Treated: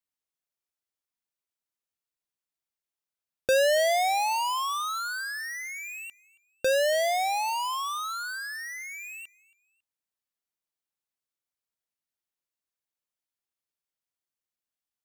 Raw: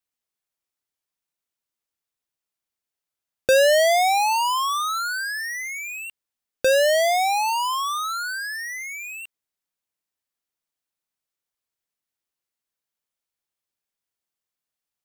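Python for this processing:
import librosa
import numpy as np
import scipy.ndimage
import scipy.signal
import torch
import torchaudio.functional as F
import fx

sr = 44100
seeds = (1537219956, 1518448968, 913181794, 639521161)

y = fx.echo_feedback(x, sr, ms=275, feedback_pct=33, wet_db=-23.0)
y = y * librosa.db_to_amplitude(-6.0)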